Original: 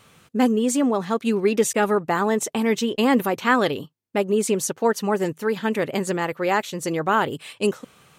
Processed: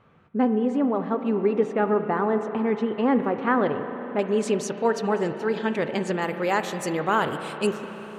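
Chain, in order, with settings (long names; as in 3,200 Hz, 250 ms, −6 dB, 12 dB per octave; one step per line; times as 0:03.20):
low-pass filter 1,500 Hz 12 dB per octave, from 0:04.19 5,400 Hz, from 0:06.22 12,000 Hz
convolution reverb RT60 4.4 s, pre-delay 33 ms, DRR 7.5 dB
level −2.5 dB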